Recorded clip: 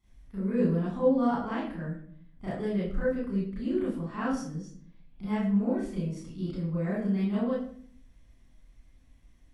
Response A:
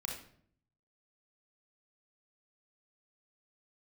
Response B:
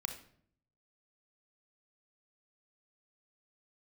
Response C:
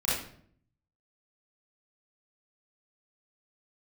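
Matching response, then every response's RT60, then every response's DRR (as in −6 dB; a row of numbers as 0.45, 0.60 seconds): C; 0.60, 0.60, 0.60 seconds; −1.0, 5.0, −10.0 decibels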